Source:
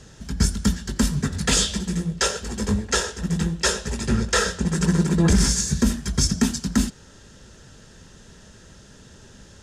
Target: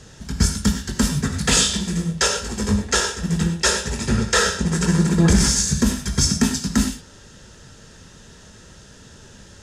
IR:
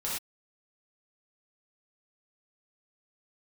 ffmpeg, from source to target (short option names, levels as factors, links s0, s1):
-filter_complex "[0:a]asplit=2[s0][s1];[1:a]atrim=start_sample=2205,lowshelf=f=440:g=-7[s2];[s1][s2]afir=irnorm=-1:irlink=0,volume=0.473[s3];[s0][s3]amix=inputs=2:normalize=0"